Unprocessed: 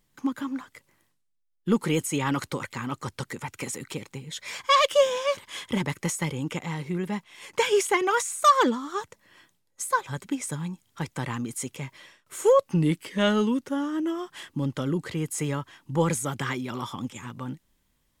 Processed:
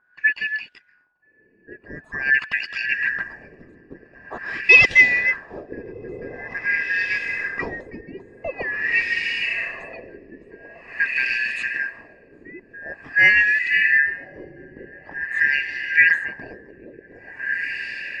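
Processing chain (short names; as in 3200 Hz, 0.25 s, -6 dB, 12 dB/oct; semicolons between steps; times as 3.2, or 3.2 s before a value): four-band scrambler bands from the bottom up 3142; diffused feedback echo 1.329 s, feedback 48%, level -7.5 dB; LFO low-pass sine 0.46 Hz 360–3200 Hz; gain +2.5 dB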